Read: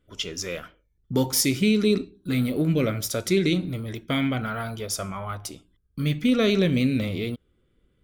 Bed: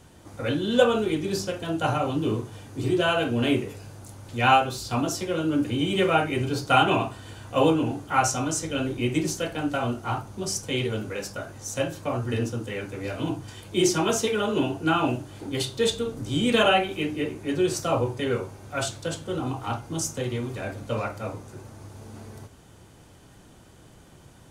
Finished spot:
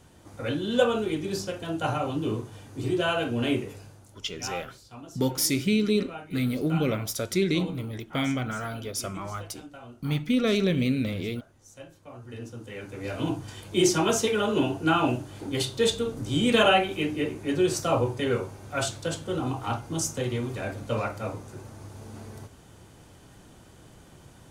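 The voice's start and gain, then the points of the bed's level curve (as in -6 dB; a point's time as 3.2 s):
4.05 s, -3.0 dB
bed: 3.79 s -3 dB
4.35 s -18.5 dB
12.02 s -18.5 dB
13.19 s 0 dB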